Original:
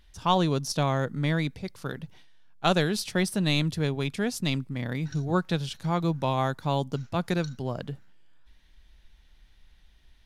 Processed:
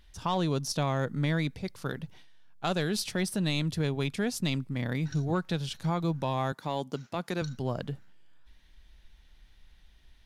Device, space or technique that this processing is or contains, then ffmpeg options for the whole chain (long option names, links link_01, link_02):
soft clipper into limiter: -filter_complex "[0:a]asettb=1/sr,asplit=3[link_01][link_02][link_03];[link_01]atrim=end=6.524[link_04];[link_02]atrim=start=6.52:end=7.42,asetpts=PTS-STARTPTS,afade=type=in:duration=0.004:curve=qsin,afade=type=out:start_time=0.896:duration=0.004:curve=qsin,highpass=200[link_05];[link_03]atrim=start=7.416[link_06];[link_04][link_05]acrossfade=duration=0.004:curve1=hsin:curve2=qsin[link_07];[link_07][link_06]acrossfade=duration=0.004:curve1=qsin:curve2=hsin,asoftclip=type=tanh:threshold=-12.5dB,alimiter=limit=-20dB:level=0:latency=1:release=211"